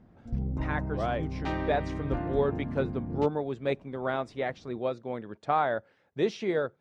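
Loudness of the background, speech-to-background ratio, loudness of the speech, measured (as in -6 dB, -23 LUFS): -34.5 LUFS, 2.5 dB, -32.0 LUFS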